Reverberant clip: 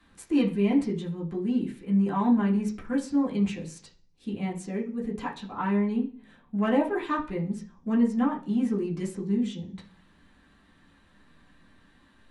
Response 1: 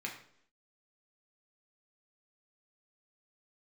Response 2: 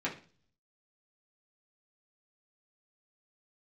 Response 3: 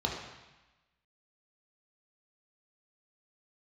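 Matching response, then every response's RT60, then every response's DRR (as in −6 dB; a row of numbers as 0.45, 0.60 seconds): 2; 0.65, 0.40, 1.1 seconds; −1.5, −6.5, −2.0 decibels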